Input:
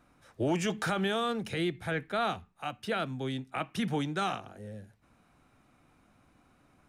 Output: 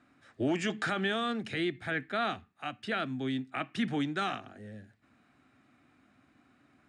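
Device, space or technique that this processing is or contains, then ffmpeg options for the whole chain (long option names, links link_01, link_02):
car door speaker: -af "highpass=110,equalizer=frequency=170:width_type=q:width=4:gain=-6,equalizer=frequency=260:width_type=q:width=4:gain=5,equalizer=frequency=500:width_type=q:width=4:gain=-7,equalizer=frequency=930:width_type=q:width=4:gain=-7,equalizer=frequency=1800:width_type=q:width=4:gain=5,equalizer=frequency=5900:width_type=q:width=4:gain=-7,lowpass=frequency=7800:width=0.5412,lowpass=frequency=7800:width=1.3066"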